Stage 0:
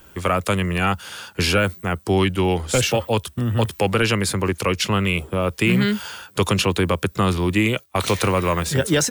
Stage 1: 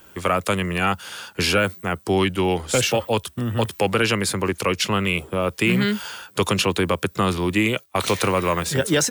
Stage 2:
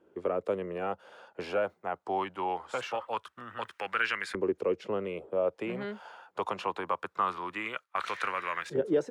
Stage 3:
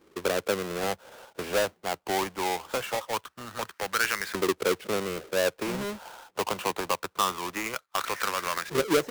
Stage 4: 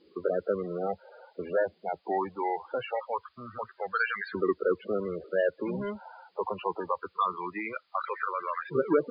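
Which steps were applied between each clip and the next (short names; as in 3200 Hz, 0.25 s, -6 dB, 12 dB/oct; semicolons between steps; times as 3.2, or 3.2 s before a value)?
low shelf 86 Hz -11.5 dB
LFO band-pass saw up 0.23 Hz 390–1800 Hz; gain -2.5 dB
half-waves squared off
loudest bins only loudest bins 16; added noise blue -60 dBFS; brick-wall FIR low-pass 5000 Hz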